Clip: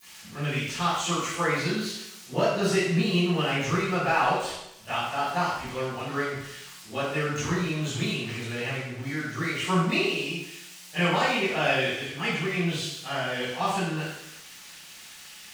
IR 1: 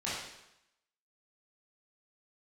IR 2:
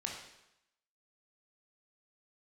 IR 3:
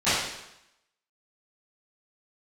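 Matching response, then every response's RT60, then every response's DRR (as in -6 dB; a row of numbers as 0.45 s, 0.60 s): 3; 0.85 s, 0.85 s, 0.85 s; -9.5 dB, -1.0 dB, -19.5 dB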